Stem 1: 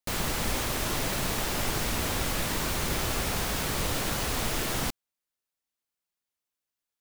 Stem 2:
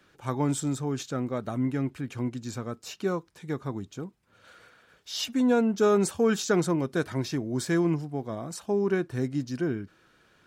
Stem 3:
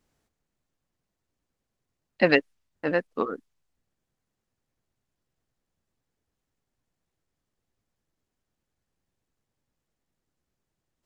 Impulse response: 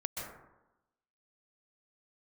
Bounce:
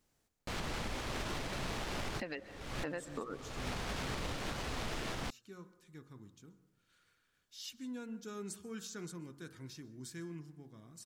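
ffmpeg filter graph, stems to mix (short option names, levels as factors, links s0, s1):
-filter_complex "[0:a]adynamicsmooth=sensitivity=3.5:basefreq=2800,adelay=400,volume=0.841[s0];[1:a]equalizer=f=650:w=1.2:g=-13,bandreject=f=46.53:t=h:w=4,bandreject=f=93.06:t=h:w=4,bandreject=f=139.59:t=h:w=4,bandreject=f=186.12:t=h:w=4,bandreject=f=232.65:t=h:w=4,bandreject=f=279.18:t=h:w=4,bandreject=f=325.71:t=h:w=4,bandreject=f=372.24:t=h:w=4,bandreject=f=418.77:t=h:w=4,bandreject=f=465.3:t=h:w=4,bandreject=f=511.83:t=h:w=4,bandreject=f=558.36:t=h:w=4,bandreject=f=604.89:t=h:w=4,bandreject=f=651.42:t=h:w=4,bandreject=f=697.95:t=h:w=4,bandreject=f=744.48:t=h:w=4,bandreject=f=791.01:t=h:w=4,bandreject=f=837.54:t=h:w=4,bandreject=f=884.07:t=h:w=4,bandreject=f=930.6:t=h:w=4,bandreject=f=977.13:t=h:w=4,bandreject=f=1023.66:t=h:w=4,bandreject=f=1070.19:t=h:w=4,bandreject=f=1116.72:t=h:w=4,bandreject=f=1163.25:t=h:w=4,bandreject=f=1209.78:t=h:w=4,bandreject=f=1256.31:t=h:w=4,bandreject=f=1302.84:t=h:w=4,bandreject=f=1349.37:t=h:w=4,bandreject=f=1395.9:t=h:w=4,bandreject=f=1442.43:t=h:w=4,bandreject=f=1488.96:t=h:w=4,bandreject=f=1535.49:t=h:w=4,bandreject=f=1582.02:t=h:w=4,bandreject=f=1628.55:t=h:w=4,bandreject=f=1675.08:t=h:w=4,bandreject=f=1721.61:t=h:w=4,adelay=2450,volume=0.119,asplit=2[s1][s2];[s2]volume=0.15[s3];[2:a]acompressor=threshold=0.0562:ratio=6,volume=0.562,asplit=3[s4][s5][s6];[s5]volume=0.158[s7];[s6]apad=whole_len=326561[s8];[s0][s8]sidechaincompress=threshold=0.00224:ratio=20:attack=5.8:release=349[s9];[3:a]atrim=start_sample=2205[s10];[s3][s7]amix=inputs=2:normalize=0[s11];[s11][s10]afir=irnorm=-1:irlink=0[s12];[s9][s1][s4][s12]amix=inputs=4:normalize=0,highshelf=f=4300:g=6,alimiter=level_in=1.78:limit=0.0631:level=0:latency=1:release=309,volume=0.562"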